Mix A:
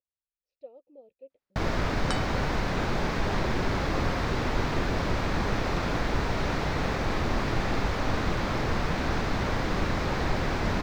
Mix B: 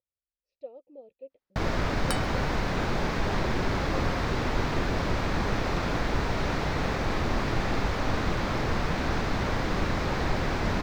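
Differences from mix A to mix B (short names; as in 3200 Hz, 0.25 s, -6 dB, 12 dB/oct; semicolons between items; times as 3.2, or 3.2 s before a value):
speech +4.0 dB; second sound: remove steep low-pass 7800 Hz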